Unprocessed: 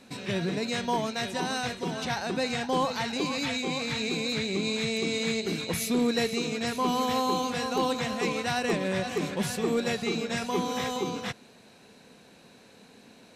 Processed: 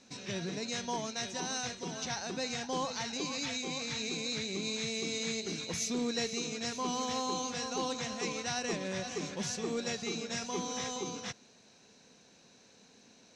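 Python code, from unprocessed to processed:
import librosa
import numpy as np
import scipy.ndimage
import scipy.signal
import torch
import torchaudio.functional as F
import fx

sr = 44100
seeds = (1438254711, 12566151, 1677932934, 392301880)

y = fx.lowpass_res(x, sr, hz=6100.0, q=4.5)
y = F.gain(torch.from_numpy(y), -8.5).numpy()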